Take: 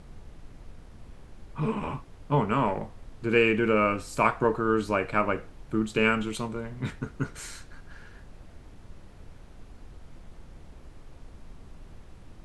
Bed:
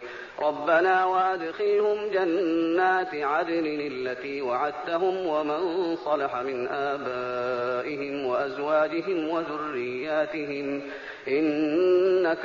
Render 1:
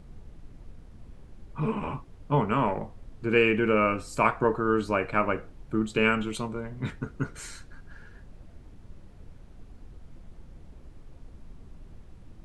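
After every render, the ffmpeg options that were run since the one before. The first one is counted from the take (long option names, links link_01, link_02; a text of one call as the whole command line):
ffmpeg -i in.wav -af "afftdn=noise_reduction=6:noise_floor=-50" out.wav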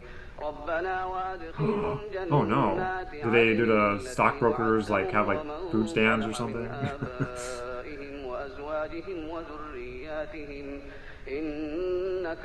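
ffmpeg -i in.wav -i bed.wav -filter_complex "[1:a]volume=-9dB[link_01];[0:a][link_01]amix=inputs=2:normalize=0" out.wav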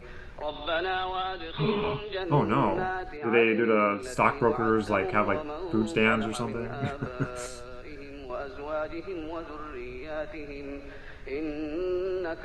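ffmpeg -i in.wav -filter_complex "[0:a]asettb=1/sr,asplit=3[link_01][link_02][link_03];[link_01]atrim=end=0.484[link_04];[link_02]atrim=start=0.48:end=2.23,asetpts=PTS-STARTPTS,afade=type=in:duration=0.004:curve=qsin,afade=type=out:start_time=1.746:duration=0.004:curve=qsin,lowpass=frequency=3500:width_type=q:width=15[link_05];[link_03]atrim=start=2.226[link_06];[link_04][link_05]acrossfade=duration=0.004:curve1=hsin:curve2=qsin[link_07];[link_07][link_06]acrossfade=duration=0.004:curve1=qsin:curve2=hsin,asettb=1/sr,asplit=3[link_08][link_09][link_10];[link_08]atrim=end=3.174[link_11];[link_09]atrim=start=3.17:end=4.03,asetpts=PTS-STARTPTS,afade=type=in:duration=0.004:curve=qsin,afade=type=out:start_time=0.856:duration=0.004:curve=qsin,highpass=170,lowpass=2900[link_12];[link_10]atrim=start=4.026[link_13];[link_11][link_12]acrossfade=duration=0.004:curve1=hsin:curve2=qsin[link_14];[link_14][link_13]acrossfade=duration=0.004:curve1=qsin:curve2=hsin,asettb=1/sr,asplit=3[link_15][link_16][link_17];[link_15]atrim=end=7.464[link_18];[link_16]atrim=start=7.46:end=8.3,asetpts=PTS-STARTPTS,afade=type=in:duration=0.004:curve=qsin,afade=type=out:start_time=0.836:duration=0.004:curve=qsin,acrossover=split=250|3000[link_19][link_20][link_21];[link_20]acompressor=threshold=-43dB:ratio=6:attack=3.2:release=140:knee=2.83:detection=peak[link_22];[link_19][link_22][link_21]amix=inputs=3:normalize=0[link_23];[link_17]atrim=start=8.296[link_24];[link_18][link_23]acrossfade=duration=0.004:curve1=hsin:curve2=qsin[link_25];[link_25][link_24]acrossfade=duration=0.004:curve1=qsin:curve2=hsin" out.wav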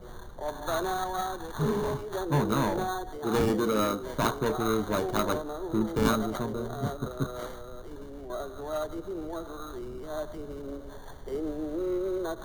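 ffmpeg -i in.wav -filter_complex "[0:a]acrossover=split=280|1100[link_01][link_02][link_03];[link_02]asoftclip=type=hard:threshold=-28dB[link_04];[link_03]acrusher=samples=17:mix=1:aa=0.000001[link_05];[link_01][link_04][link_05]amix=inputs=3:normalize=0" out.wav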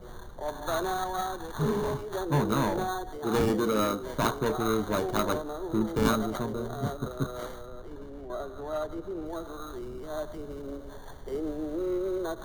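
ffmpeg -i in.wav -filter_complex "[0:a]asettb=1/sr,asplit=3[link_01][link_02][link_03];[link_01]atrim=end=7.664[link_04];[link_02]atrim=start=7.66:end=9.26,asetpts=PTS-STARTPTS,afade=type=in:duration=0.004:curve=qsin,afade=type=out:start_time=1.596:duration=0.004:curve=qsin,highshelf=frequency=4700:gain=-8.5[link_05];[link_03]atrim=start=9.256[link_06];[link_04][link_05]acrossfade=duration=0.004:curve1=hsin:curve2=qsin[link_07];[link_07][link_06]acrossfade=duration=0.004:curve1=qsin:curve2=hsin" out.wav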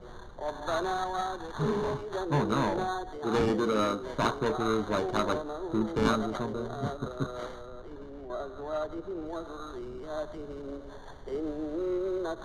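ffmpeg -i in.wav -af "lowpass=5500,lowshelf=frequency=210:gain=-3.5" out.wav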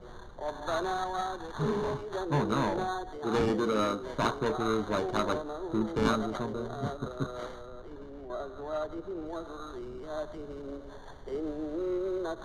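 ffmpeg -i in.wav -af "volume=-1dB" out.wav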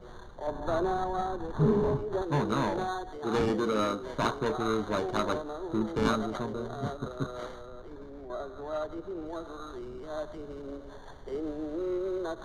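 ffmpeg -i in.wav -filter_complex "[0:a]asettb=1/sr,asplit=3[link_01][link_02][link_03];[link_01]atrim=end=0.474[link_04];[link_02]atrim=start=0.47:end=2.22,asetpts=PTS-STARTPTS,afade=type=in:duration=0.004:curve=qsin,afade=type=out:start_time=1.746:duration=0.004:curve=qsin,tiltshelf=frequency=930:gain=7.5[link_05];[link_03]atrim=start=2.216[link_06];[link_04][link_05]acrossfade=duration=0.004:curve1=hsin:curve2=qsin[link_07];[link_07][link_06]acrossfade=duration=0.004:curve1=qsin:curve2=hsin,asettb=1/sr,asplit=3[link_08][link_09][link_10];[link_08]atrim=end=7.884[link_11];[link_09]atrim=start=7.88:end=8.64,asetpts=PTS-STARTPTS,afade=type=in:duration=0.004:curve=qsin,afade=type=out:start_time=0.756:duration=0.004:curve=qsin,bandreject=frequency=2900:width=8.8[link_12];[link_10]atrim=start=8.636[link_13];[link_11][link_12]acrossfade=duration=0.004:curve1=hsin:curve2=qsin[link_14];[link_14][link_13]acrossfade=duration=0.004:curve1=qsin:curve2=hsin" out.wav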